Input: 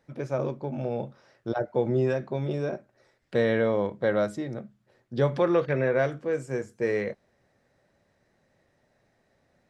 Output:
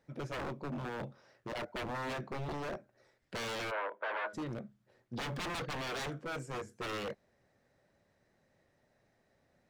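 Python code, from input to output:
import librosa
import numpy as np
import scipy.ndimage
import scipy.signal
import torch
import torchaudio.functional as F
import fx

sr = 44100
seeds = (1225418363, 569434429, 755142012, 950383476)

y = 10.0 ** (-29.0 / 20.0) * (np.abs((x / 10.0 ** (-29.0 / 20.0) + 3.0) % 4.0 - 2.0) - 1.0)
y = fx.cabinet(y, sr, low_hz=440.0, low_slope=24, high_hz=2700.0, hz=(590.0, 1000.0, 1500.0, 2400.0), db=(5, 7, 8, -3), at=(3.7, 4.33), fade=0.02)
y = F.gain(torch.from_numpy(y), -4.5).numpy()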